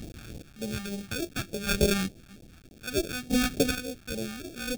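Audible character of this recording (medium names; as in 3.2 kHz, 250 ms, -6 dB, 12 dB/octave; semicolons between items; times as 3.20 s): a quantiser's noise floor 8-bit, dither triangular; chopped level 0.6 Hz, depth 65%, duty 25%; aliases and images of a low sample rate 1 kHz, jitter 0%; phasing stages 2, 3.4 Hz, lowest notch 450–1300 Hz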